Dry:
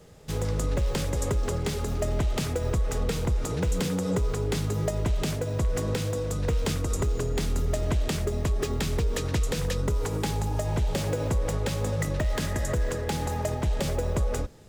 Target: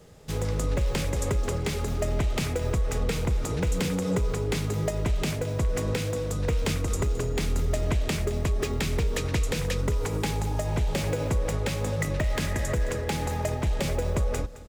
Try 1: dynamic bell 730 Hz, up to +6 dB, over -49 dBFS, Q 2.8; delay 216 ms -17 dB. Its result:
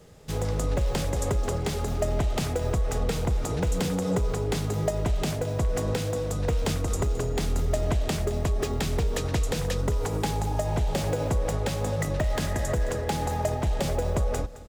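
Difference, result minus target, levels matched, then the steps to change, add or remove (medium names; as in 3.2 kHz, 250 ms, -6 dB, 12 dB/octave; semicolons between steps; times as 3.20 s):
1 kHz band +3.0 dB
change: dynamic bell 2.3 kHz, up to +6 dB, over -49 dBFS, Q 2.8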